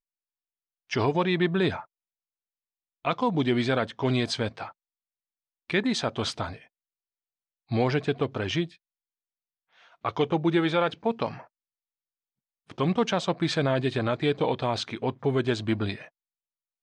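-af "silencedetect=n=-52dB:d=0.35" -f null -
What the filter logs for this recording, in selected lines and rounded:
silence_start: 0.00
silence_end: 0.90 | silence_duration: 0.90
silence_start: 1.85
silence_end: 3.05 | silence_duration: 1.20
silence_start: 4.72
silence_end: 5.70 | silence_duration: 0.98
silence_start: 6.67
silence_end: 7.69 | silence_duration: 1.02
silence_start: 8.76
silence_end: 9.76 | silence_duration: 1.00
silence_start: 11.47
silence_end: 12.70 | silence_duration: 1.23
silence_start: 16.09
silence_end: 16.83 | silence_duration: 0.74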